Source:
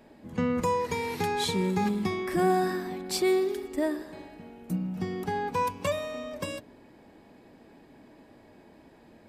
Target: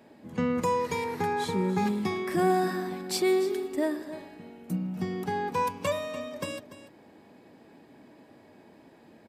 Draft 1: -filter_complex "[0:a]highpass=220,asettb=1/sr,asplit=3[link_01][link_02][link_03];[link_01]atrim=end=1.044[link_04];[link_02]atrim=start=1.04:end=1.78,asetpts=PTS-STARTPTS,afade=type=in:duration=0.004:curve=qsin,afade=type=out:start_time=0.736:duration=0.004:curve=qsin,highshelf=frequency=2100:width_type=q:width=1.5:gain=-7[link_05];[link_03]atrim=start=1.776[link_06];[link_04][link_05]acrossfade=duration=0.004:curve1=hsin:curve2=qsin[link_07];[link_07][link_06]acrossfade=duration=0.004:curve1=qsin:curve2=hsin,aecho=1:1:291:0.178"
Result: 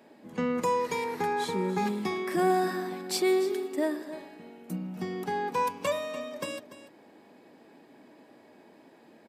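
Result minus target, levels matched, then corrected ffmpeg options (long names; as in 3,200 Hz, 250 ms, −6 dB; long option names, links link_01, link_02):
125 Hz band −4.0 dB
-filter_complex "[0:a]highpass=100,asettb=1/sr,asplit=3[link_01][link_02][link_03];[link_01]atrim=end=1.044[link_04];[link_02]atrim=start=1.04:end=1.78,asetpts=PTS-STARTPTS,afade=type=in:duration=0.004:curve=qsin,afade=type=out:start_time=0.736:duration=0.004:curve=qsin,highshelf=frequency=2100:width_type=q:width=1.5:gain=-7[link_05];[link_03]atrim=start=1.776[link_06];[link_04][link_05]acrossfade=duration=0.004:curve1=hsin:curve2=qsin[link_07];[link_07][link_06]acrossfade=duration=0.004:curve1=qsin:curve2=hsin,aecho=1:1:291:0.178"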